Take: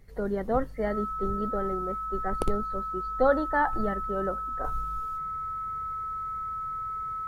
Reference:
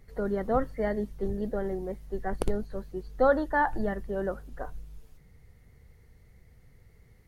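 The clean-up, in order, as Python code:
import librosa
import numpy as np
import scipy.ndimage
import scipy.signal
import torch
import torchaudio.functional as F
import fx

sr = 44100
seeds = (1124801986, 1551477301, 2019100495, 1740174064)

y = fx.notch(x, sr, hz=1300.0, q=30.0)
y = fx.gain(y, sr, db=fx.steps((0.0, 0.0), (4.64, -6.0)))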